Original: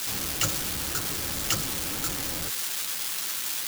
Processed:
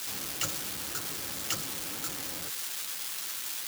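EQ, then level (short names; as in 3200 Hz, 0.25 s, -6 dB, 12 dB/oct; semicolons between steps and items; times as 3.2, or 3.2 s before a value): HPF 170 Hz 6 dB/oct; -5.5 dB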